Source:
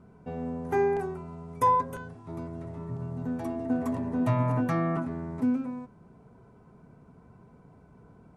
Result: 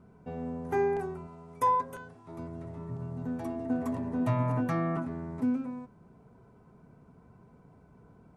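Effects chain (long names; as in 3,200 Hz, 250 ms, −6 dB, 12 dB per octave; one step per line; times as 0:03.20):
0:01.27–0:02.39: low-shelf EQ 220 Hz −9 dB
level −2.5 dB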